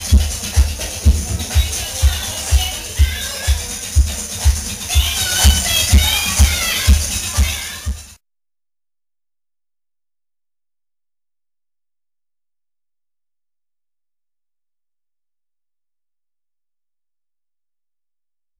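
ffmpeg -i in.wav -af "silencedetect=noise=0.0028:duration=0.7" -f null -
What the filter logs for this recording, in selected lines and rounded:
silence_start: 8.16
silence_end: 18.59 | silence_duration: 10.43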